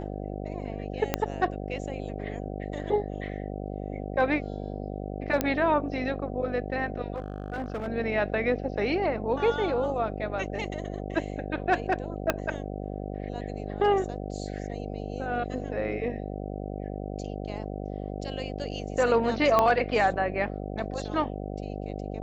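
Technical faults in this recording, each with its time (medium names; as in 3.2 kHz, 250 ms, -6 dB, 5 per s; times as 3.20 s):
buzz 50 Hz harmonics 15 -35 dBFS
1.14 s: pop -9 dBFS
5.41 s: pop -9 dBFS
7.14–7.88 s: clipped -28 dBFS
12.30 s: pop -9 dBFS
19.59 s: pop -9 dBFS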